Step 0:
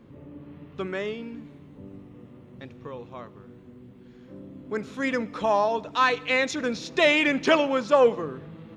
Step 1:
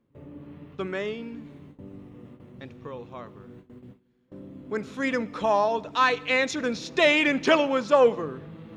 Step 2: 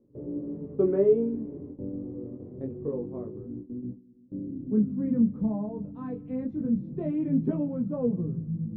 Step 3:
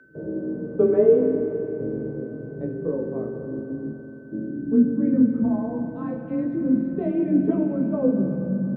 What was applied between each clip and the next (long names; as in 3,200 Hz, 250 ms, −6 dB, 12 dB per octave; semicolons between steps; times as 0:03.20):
reversed playback; upward compression, threshold −41 dBFS; reversed playback; noise gate with hold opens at −37 dBFS
chorus effect 0.25 Hz, delay 16.5 ms, depth 7.8 ms; low-pass filter sweep 430 Hz → 180 Hz, 0:02.52–0:05.60; level +7 dB
steady tone 1,500 Hz −56 dBFS; spring reverb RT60 3.6 s, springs 42/46 ms, chirp 45 ms, DRR 4.5 dB; frequency shifter +27 Hz; level +5 dB